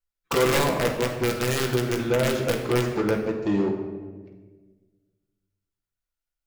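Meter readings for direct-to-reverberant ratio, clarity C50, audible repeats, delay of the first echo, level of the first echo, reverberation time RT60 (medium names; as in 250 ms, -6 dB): 0.5 dB, 6.0 dB, no echo, no echo, no echo, 1.4 s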